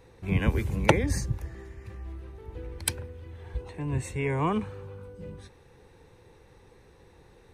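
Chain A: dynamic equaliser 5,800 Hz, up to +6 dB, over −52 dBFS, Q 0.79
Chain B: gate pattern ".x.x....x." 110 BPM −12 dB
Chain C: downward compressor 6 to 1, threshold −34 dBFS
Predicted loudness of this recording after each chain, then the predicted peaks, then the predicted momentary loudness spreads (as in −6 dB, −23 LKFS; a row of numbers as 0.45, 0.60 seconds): −29.0, −34.0, −40.5 LKFS; −1.5, −6.0, −14.5 dBFS; 19, 19, 19 LU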